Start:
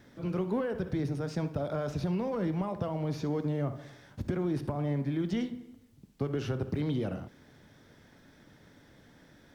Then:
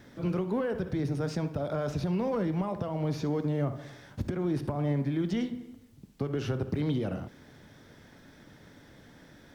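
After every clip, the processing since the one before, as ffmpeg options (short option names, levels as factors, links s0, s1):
-af "alimiter=level_in=1.12:limit=0.0631:level=0:latency=1:release=312,volume=0.891,volume=1.58"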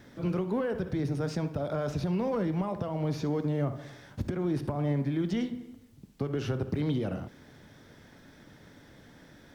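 -af anull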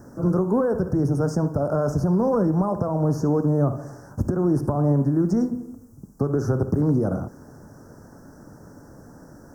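-af "asuperstop=centerf=2900:order=8:qfactor=0.67,volume=2.82"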